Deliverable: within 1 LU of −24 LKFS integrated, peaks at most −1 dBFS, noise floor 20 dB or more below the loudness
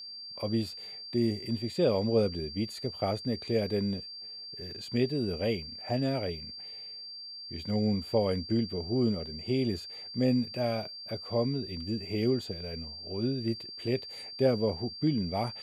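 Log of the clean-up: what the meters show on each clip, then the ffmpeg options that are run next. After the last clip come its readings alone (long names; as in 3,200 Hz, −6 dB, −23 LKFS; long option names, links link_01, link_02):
interfering tone 4,700 Hz; level of the tone −41 dBFS; integrated loudness −31.5 LKFS; sample peak −13.5 dBFS; target loudness −24.0 LKFS
→ -af "bandreject=frequency=4700:width=30"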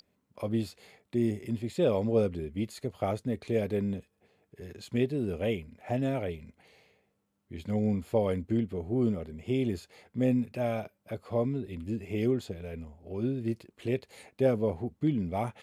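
interfering tone none found; integrated loudness −31.5 LKFS; sample peak −13.5 dBFS; target loudness −24.0 LKFS
→ -af "volume=7.5dB"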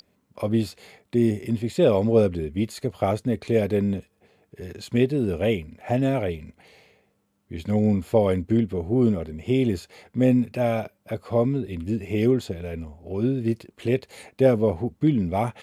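integrated loudness −24.0 LKFS; sample peak −6.0 dBFS; background noise floor −69 dBFS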